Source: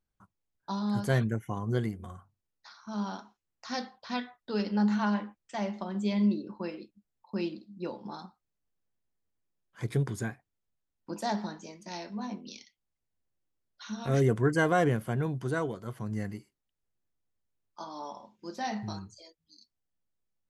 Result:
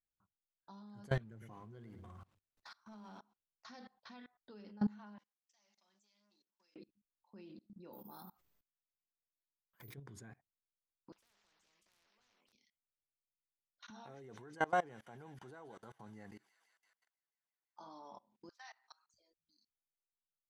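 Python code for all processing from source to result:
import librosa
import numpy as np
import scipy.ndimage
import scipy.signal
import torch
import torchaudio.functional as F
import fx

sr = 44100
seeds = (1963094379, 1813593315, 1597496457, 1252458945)

y = fx.chain(x, sr, fx.law_mismatch(coded='mu'),
    fx.hum_notches(base_hz=50, count=5),
    fx.echo_crushed(ms=109, feedback_pct=35, bits=8, wet_db=-14.0), at=(1.2, 3.19))
y = fx.chain(y, sr, fx.leveller(passes=2),
    fx.bandpass_q(hz=5900.0, q=3.5),
    fx.upward_expand(threshold_db=-59.0, expansion=1.5), at=(5.18, 6.76))
y = fx.chain(y, sr, fx.low_shelf(hz=150.0, db=-2.0),
    fx.resample_bad(factor=3, down='none', up='zero_stuff'),
    fx.sustainer(db_per_s=79.0), at=(7.93, 9.94))
y = fx.chain(y, sr, fx.highpass(hz=1100.0, slope=12),
    fx.tube_stage(drive_db=33.0, bias=0.25),
    fx.spectral_comp(ratio=10.0), at=(11.12, 12.53))
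y = fx.chain(y, sr, fx.highpass(hz=350.0, slope=6),
    fx.peak_eq(hz=830.0, db=13.0, octaves=0.23),
    fx.echo_wet_highpass(ms=167, feedback_pct=70, hz=3000.0, wet_db=-6), at=(13.9, 17.8))
y = fx.chain(y, sr, fx.highpass(hz=1100.0, slope=24),
    fx.dynamic_eq(hz=2900.0, q=0.92, threshold_db=-53.0, ratio=4.0, max_db=-5), at=(18.49, 19.14))
y = fx.high_shelf(y, sr, hz=7100.0, db=-11.0)
y = fx.level_steps(y, sr, step_db=24)
y = F.gain(torch.from_numpy(y), -5.5).numpy()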